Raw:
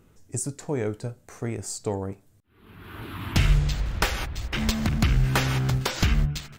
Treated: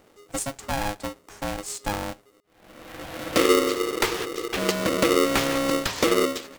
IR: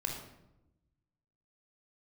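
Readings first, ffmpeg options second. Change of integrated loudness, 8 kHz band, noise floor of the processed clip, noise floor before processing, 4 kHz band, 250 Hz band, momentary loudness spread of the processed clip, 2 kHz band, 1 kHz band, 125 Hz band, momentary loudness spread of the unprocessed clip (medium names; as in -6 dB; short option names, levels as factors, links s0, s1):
+2.5 dB, +3.5 dB, -59 dBFS, -59 dBFS, +3.5 dB, +3.5 dB, 15 LU, +3.0 dB, +6.5 dB, -13.0 dB, 14 LU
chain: -af "aeval=exprs='val(0)*sgn(sin(2*PI*410*n/s))':c=same"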